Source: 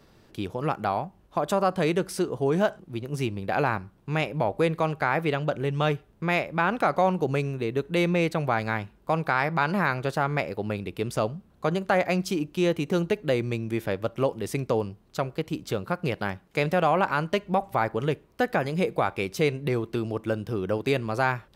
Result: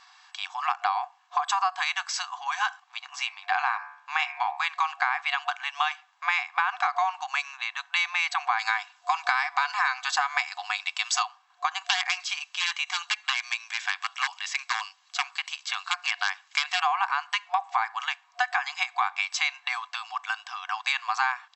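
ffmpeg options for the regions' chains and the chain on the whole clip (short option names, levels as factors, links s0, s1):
-filter_complex "[0:a]asettb=1/sr,asplit=3[s0][s1][s2];[s0]atrim=end=3.054[s3];[s1]atrim=start=3.05:end=4.67,asetpts=PTS-STARTPTS,afade=t=in:d=0.004:c=qsin,afade=t=out:st=1.616:d=0.004:c=qsin,highshelf=f=5600:g=-5,bandreject=f=72.41:t=h:w=4,bandreject=f=144.82:t=h:w=4,bandreject=f=217.23:t=h:w=4,bandreject=f=289.64:t=h:w=4,bandreject=f=362.05:t=h:w=4,bandreject=f=434.46:t=h:w=4,bandreject=f=506.87:t=h:w=4,bandreject=f=579.28:t=h:w=4,bandreject=f=651.69:t=h:w=4,bandreject=f=724.1:t=h:w=4,bandreject=f=796.51:t=h:w=4,bandreject=f=868.92:t=h:w=4,bandreject=f=941.33:t=h:w=4,bandreject=f=1013.74:t=h:w=4,bandreject=f=1086.15:t=h:w=4,bandreject=f=1158.56:t=h:w=4,bandreject=f=1230.97:t=h:w=4,bandreject=f=1303.38:t=h:w=4,bandreject=f=1375.79:t=h:w=4,bandreject=f=1448.2:t=h:w=4,bandreject=f=1520.61:t=h:w=4,bandreject=f=1593.02:t=h:w=4,bandreject=f=1665.43:t=h:w=4,bandreject=f=1737.84:t=h:w=4,bandreject=f=1810.25:t=h:w=4,bandreject=f=1882.66:t=h:w=4,bandreject=f=1955.07:t=h:w=4,bandreject=f=2027.48:t=h:w=4,bandreject=f=2099.89:t=h:w=4,bandreject=f=2172.3:t=h:w=4,bandreject=f=2244.71:t=h:w=4,bandreject=f=2317.12:t=h:w=4,bandreject=f=2389.53:t=h:w=4,bandreject=f=2461.94:t=h:w=4,bandreject=f=2534.35:t=h:w=4,bandreject=f=2606.76:t=h:w=4[s4];[s2]atrim=start=4.666[s5];[s3][s4]acrossfade=d=0.004:c1=hsin:c2=qsin[s6];[s6][s5]acrossfade=d=0.004:c1=qsin:c2=hsin,asettb=1/sr,asplit=3[s7][s8][s9];[s7]atrim=end=8.594[s10];[s8]atrim=start=8.59:end=11.23,asetpts=PTS-STARTPTS,afade=t=in:d=0.004:c=qsin,afade=t=out:st=2.636:d=0.004:c=qsin,highpass=f=300:w=0.5412,highpass=f=300:w=1.3066,highshelf=f=3700:g=11.5,aecho=1:1:4:0.37,atrim=end_sample=116424[s11];[s9]atrim=start=11.226[s12];[s10][s11]acrossfade=d=0.004:c1=hsin:c2=qsin[s13];[s13][s12]acrossfade=d=0.004:c1=qsin:c2=hsin,asettb=1/sr,asplit=3[s14][s15][s16];[s14]atrim=end=11.844[s17];[s15]atrim=start=11.84:end=16.81,asetpts=PTS-STARTPTS,afade=t=in:d=0.004:c=qsin,afade=t=out:st=4.966:d=0.004:c=qsin,acrossover=split=2900[s18][s19];[s19]acompressor=threshold=0.00316:ratio=4:attack=1:release=60[s20];[s18][s20]amix=inputs=2:normalize=0,aeval=exprs='0.133*(abs(mod(val(0)/0.133+3,4)-2)-1)':c=same,tiltshelf=f=1400:g=-9[s21];[s16]atrim=start=16.806[s22];[s17][s21]acrossfade=d=0.004:c1=hsin:c2=qsin[s23];[s23][s22]acrossfade=d=0.004:c1=qsin:c2=hsin,afftfilt=real='re*between(b*sr/4096,720,7900)':imag='im*between(b*sr/4096,720,7900)':win_size=4096:overlap=0.75,aecho=1:1:1.8:0.45,acompressor=threshold=0.0316:ratio=6,volume=2.66"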